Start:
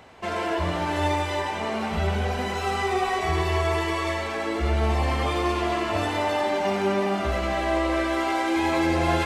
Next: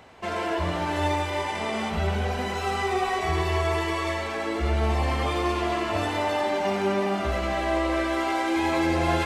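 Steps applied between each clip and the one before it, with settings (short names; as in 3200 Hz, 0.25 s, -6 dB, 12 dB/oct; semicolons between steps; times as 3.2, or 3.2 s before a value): spectral repair 1.33–1.88, 1500–11000 Hz before; gain -1 dB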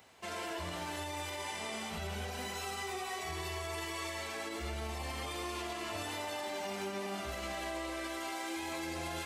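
HPF 60 Hz; pre-emphasis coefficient 0.8; limiter -31.5 dBFS, peak gain reduction 8 dB; gain +1 dB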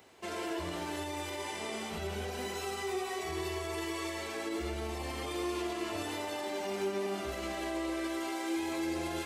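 bell 360 Hz +9 dB 0.78 oct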